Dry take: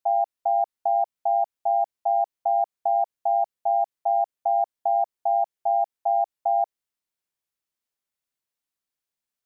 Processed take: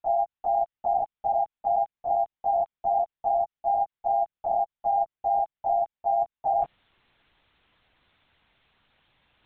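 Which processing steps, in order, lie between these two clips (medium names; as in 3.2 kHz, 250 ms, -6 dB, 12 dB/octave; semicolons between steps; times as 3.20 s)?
reverse; upward compressor, threshold -34 dBFS; reverse; LPC vocoder at 8 kHz whisper; trim -2 dB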